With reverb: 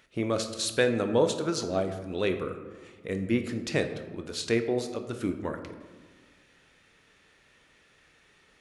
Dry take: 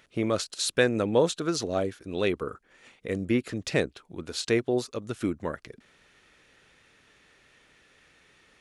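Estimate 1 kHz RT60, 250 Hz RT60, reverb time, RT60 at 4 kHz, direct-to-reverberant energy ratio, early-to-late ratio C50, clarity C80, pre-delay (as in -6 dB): 1.4 s, 1.9 s, 1.5 s, 0.65 s, 7.0 dB, 9.0 dB, 11.0 dB, 21 ms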